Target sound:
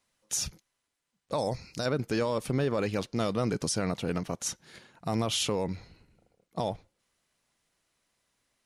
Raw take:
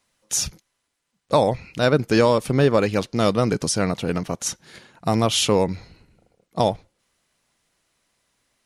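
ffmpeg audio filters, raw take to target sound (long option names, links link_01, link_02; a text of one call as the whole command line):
ffmpeg -i in.wav -filter_complex "[0:a]asettb=1/sr,asplit=3[link_01][link_02][link_03];[link_01]atrim=end=1.384[link_04];[link_02]atrim=start=1.38:end=1.86,asetpts=PTS-STARTPTS,afade=type=in:duration=0.004:curve=qsin,afade=type=out:start_time=0.476:duration=0.004:curve=qsin,highshelf=frequency=3900:width_type=q:width=3:gain=7[link_05];[link_03]atrim=start=1.856[link_06];[link_04][link_05]acrossfade=duration=0.004:curve1=hsin:curve2=qsin[link_07];[link_07][link_06]acrossfade=duration=0.004:curve1=qsin:curve2=hsin,alimiter=limit=-13dB:level=0:latency=1:release=33,volume=-6.5dB" out.wav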